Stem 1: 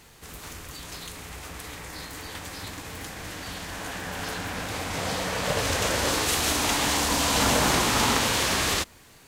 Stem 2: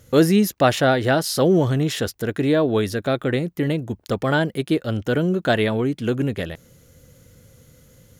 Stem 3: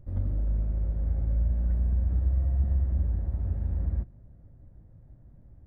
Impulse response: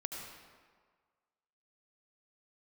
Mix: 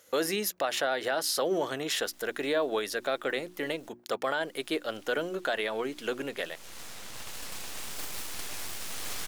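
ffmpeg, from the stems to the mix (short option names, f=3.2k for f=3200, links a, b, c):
-filter_complex "[0:a]highpass=f=1.3k:p=1,aeval=exprs='abs(val(0))':c=same,adelay=1700,volume=-8.5dB,asplit=3[a][b][c];[a]atrim=end=3.89,asetpts=PTS-STARTPTS,afade=t=out:st=3.886:d=0.004:c=hsin[d];[b]atrim=start=3.89:end=4.42,asetpts=PTS-STARTPTS,volume=0[e];[c]atrim=start=4.42,asetpts=PTS-STARTPTS,afade=t=in:d=0.004:c=hsin[f];[d][e][f]concat=n=3:v=0:a=1[g];[1:a]bandreject=f=60:t=h:w=6,bandreject=f=120:t=h:w=6,bandreject=f=180:t=h:w=6,bandreject=f=240:t=h:w=6,bandreject=f=300:t=h:w=6,bandreject=f=360:t=h:w=6,volume=-2dB,asplit=2[h][i];[2:a]alimiter=level_in=3.5dB:limit=-24dB:level=0:latency=1:release=171,volume=-3.5dB,volume=-12.5dB[j];[i]apad=whole_len=484051[k];[g][k]sidechaincompress=threshold=-29dB:ratio=8:attack=25:release=623[l];[h][j]amix=inputs=2:normalize=0,highpass=570,alimiter=limit=-19dB:level=0:latency=1:release=108,volume=0dB[m];[l][m]amix=inputs=2:normalize=0"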